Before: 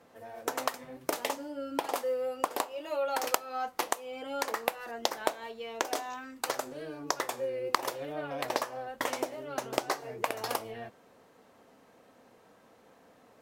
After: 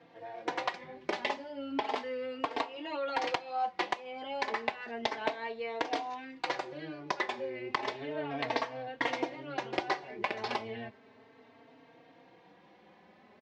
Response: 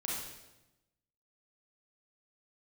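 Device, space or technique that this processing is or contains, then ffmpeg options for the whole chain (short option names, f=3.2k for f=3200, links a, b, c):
barber-pole flanger into a guitar amplifier: -filter_complex "[0:a]asplit=2[a][b];[b]adelay=3.8,afreqshift=0.33[c];[a][c]amix=inputs=2:normalize=1,asoftclip=type=tanh:threshold=-22dB,highpass=90,equalizer=f=550:t=q:w=4:g=-6,equalizer=f=1.3k:t=q:w=4:g=-7,equalizer=f=2.1k:t=q:w=4:g=4,lowpass=f=4.3k:w=0.5412,lowpass=f=4.3k:w=1.3066,volume=5.5dB"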